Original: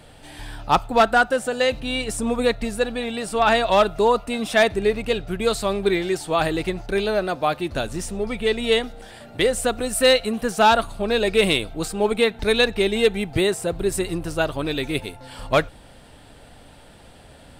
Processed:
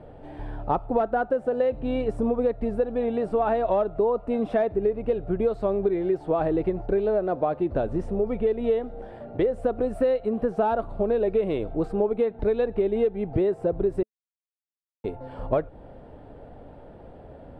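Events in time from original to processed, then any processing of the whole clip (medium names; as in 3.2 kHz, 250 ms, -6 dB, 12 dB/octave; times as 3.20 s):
14.03–15.04 s: mute
whole clip: FFT filter 220 Hz 0 dB, 430 Hz +5 dB, 630 Hz +3 dB, 6.8 kHz -30 dB; compression, threshold -22 dBFS; treble shelf 11 kHz -8.5 dB; trim +1.5 dB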